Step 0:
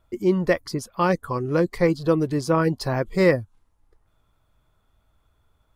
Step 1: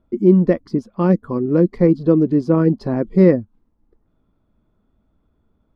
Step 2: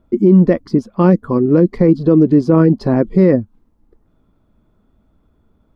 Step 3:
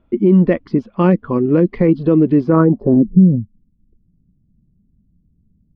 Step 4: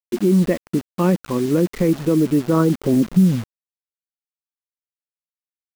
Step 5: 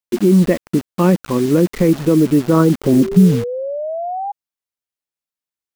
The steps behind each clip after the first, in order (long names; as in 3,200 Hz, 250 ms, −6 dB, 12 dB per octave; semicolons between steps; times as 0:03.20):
drawn EQ curve 130 Hz 0 dB, 210 Hz +14 dB, 800 Hz −3 dB, 5,000 Hz −12 dB, 11,000 Hz −26 dB
brickwall limiter −8.5 dBFS, peak gain reduction 7.5 dB; level +6.5 dB
low-pass filter sweep 2,800 Hz → 170 Hz, 0:02.41–0:03.12; level −2 dB
bit reduction 5 bits; level −4.5 dB
sound drawn into the spectrogram rise, 0:02.92–0:04.32, 350–820 Hz −27 dBFS; level +4 dB